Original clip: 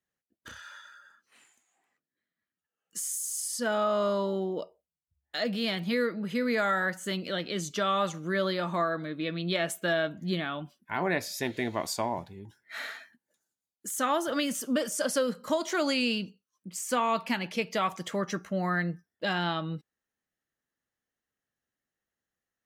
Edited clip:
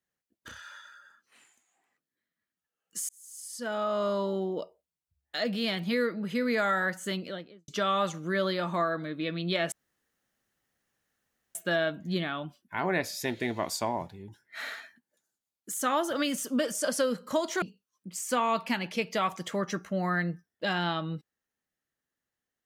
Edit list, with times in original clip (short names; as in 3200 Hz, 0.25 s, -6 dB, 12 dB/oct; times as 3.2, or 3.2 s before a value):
3.09–4.62 fade in equal-power
7.07–7.68 studio fade out
9.72 insert room tone 1.83 s
15.79–16.22 cut